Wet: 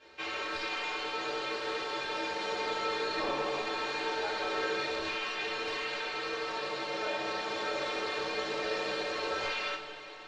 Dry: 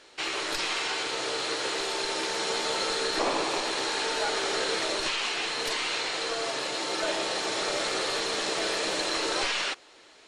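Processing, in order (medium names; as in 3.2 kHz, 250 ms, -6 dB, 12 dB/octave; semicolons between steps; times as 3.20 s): treble shelf 9.9 kHz +8 dB; in parallel at +2.5 dB: compression, threshold -38 dBFS, peak gain reduction 14.5 dB; on the sum: distance through air 210 m; inharmonic resonator 66 Hz, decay 0.22 s, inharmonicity 0.03; two-slope reverb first 0.31 s, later 5 s, from -20 dB, DRR -8 dB; trim -8 dB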